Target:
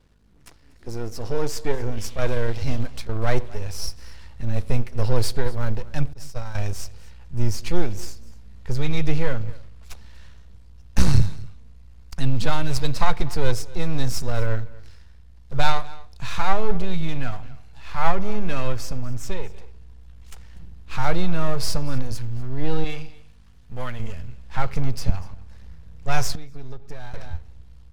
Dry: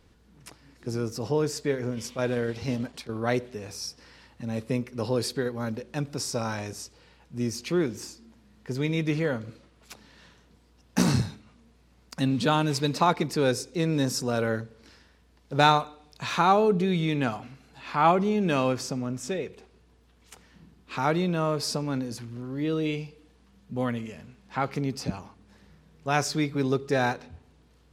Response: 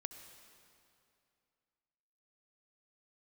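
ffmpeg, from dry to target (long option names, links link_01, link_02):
-filter_complex "[0:a]aeval=exprs='if(lt(val(0),0),0.251*val(0),val(0))':channel_layout=same,asettb=1/sr,asplit=3[link_01][link_02][link_03];[link_01]atrim=end=6.134[link_04];[link_02]atrim=start=6.13:end=6.55,asetpts=PTS-STARTPTS,afade=type=in:duration=0.004:curve=qsin,afade=type=out:start_time=0.416:duration=0.004:curve=qsin,agate=range=-33dB:threshold=-24dB:ratio=3:detection=peak[link_05];[link_03]atrim=start=6.546[link_06];[link_04][link_05]acrossfade=duration=0.004:curve1=hsin:curve2=qsin[link_07];[link_07][link_06]acrossfade=duration=0.004:curve1=qsin:curve2=hsin,asettb=1/sr,asplit=3[link_08][link_09][link_10];[link_08]atrim=end=22.844[link_11];[link_09]atrim=start=22.84:end=24,asetpts=PTS-STARTPTS,afade=type=in:duration=0.004:curve=qsin,afade=type=out:start_time=1.156:duration=0.004:curve=qsin,lowshelf=frequency=480:gain=-10[link_12];[link_10]atrim=start=23.996[link_13];[link_11][link_12]acrossfade=duration=0.004:curve1=hsin:curve2=qsin[link_14];[link_14][link_13]acrossfade=duration=0.004:curve1=qsin:curve2=hsin,aecho=1:1:242:0.0891,asubboost=boost=11:cutoff=76,asettb=1/sr,asplit=3[link_15][link_16][link_17];[link_15]atrim=end=26.354[link_18];[link_16]atrim=start=26.35:end=27.14,asetpts=PTS-STARTPTS,afade=type=in:duration=0.004:curve=qsin,afade=type=out:start_time=0.786:duration=0.004:curve=qsin,acompressor=threshold=-32dB:ratio=6[link_19];[link_17]atrim=start=27.136[link_20];[link_18][link_19]acrossfade=duration=0.004:curve1=hsin:curve2=qsin[link_21];[link_21][link_20]acrossfade=duration=0.004:curve1=qsin:curve2=hsin,aeval=exprs='val(0)+0.000891*(sin(2*PI*50*n/s)+sin(2*PI*2*50*n/s)/2+sin(2*PI*3*50*n/s)/3+sin(2*PI*4*50*n/s)/4+sin(2*PI*5*50*n/s)/5)':channel_layout=same,dynaudnorm=framelen=510:gausssize=5:maxgain=6.5dB"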